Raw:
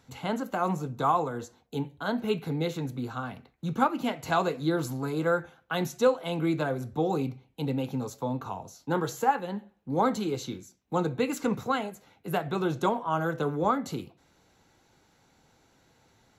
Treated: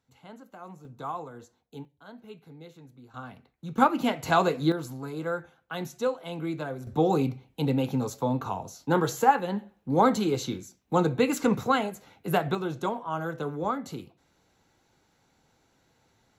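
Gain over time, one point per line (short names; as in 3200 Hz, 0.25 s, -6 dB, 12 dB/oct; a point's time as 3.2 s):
-16.5 dB
from 0.85 s -10 dB
from 1.85 s -17.5 dB
from 3.14 s -6 dB
from 3.78 s +3.5 dB
from 4.72 s -5 dB
from 6.87 s +4 dB
from 12.55 s -3.5 dB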